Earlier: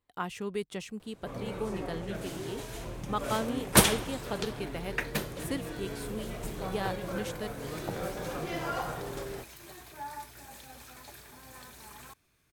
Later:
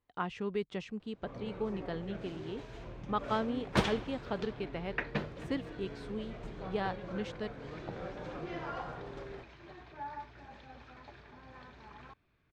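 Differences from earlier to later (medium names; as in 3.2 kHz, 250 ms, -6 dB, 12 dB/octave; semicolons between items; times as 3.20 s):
first sound -6.0 dB; second sound: add distance through air 150 m; master: add distance through air 180 m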